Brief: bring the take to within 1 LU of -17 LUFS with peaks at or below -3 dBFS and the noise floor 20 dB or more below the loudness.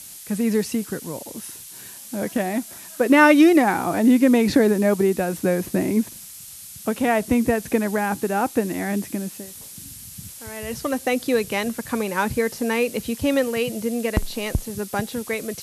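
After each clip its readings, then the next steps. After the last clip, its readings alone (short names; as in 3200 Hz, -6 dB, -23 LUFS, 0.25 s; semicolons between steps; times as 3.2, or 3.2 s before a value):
noise floor -40 dBFS; noise floor target -42 dBFS; loudness -21.5 LUFS; peak -3.5 dBFS; loudness target -17.0 LUFS
-> denoiser 6 dB, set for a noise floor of -40 dBFS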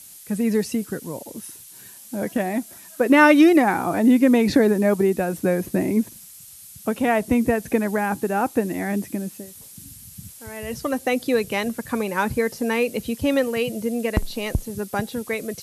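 noise floor -44 dBFS; loudness -21.5 LUFS; peak -4.0 dBFS; loudness target -17.0 LUFS
-> gain +4.5 dB; limiter -3 dBFS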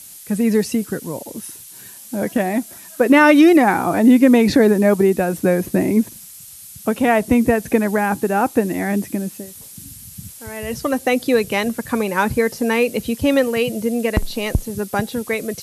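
loudness -17.5 LUFS; peak -3.0 dBFS; noise floor -39 dBFS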